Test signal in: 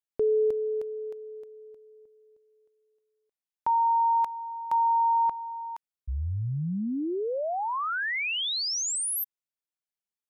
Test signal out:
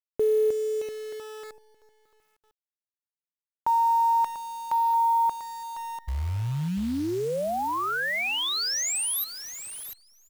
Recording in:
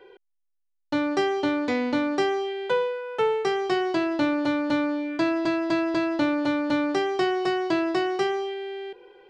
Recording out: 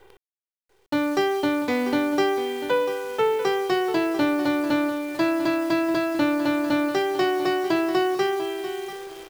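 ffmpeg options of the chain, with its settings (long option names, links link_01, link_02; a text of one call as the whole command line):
ffmpeg -i in.wav -filter_complex "[0:a]asplit=2[link_01][link_02];[link_02]aecho=0:1:693|1386:0.237|0.0427[link_03];[link_01][link_03]amix=inputs=2:normalize=0,acrusher=bits=8:dc=4:mix=0:aa=0.000001,volume=1.5dB" out.wav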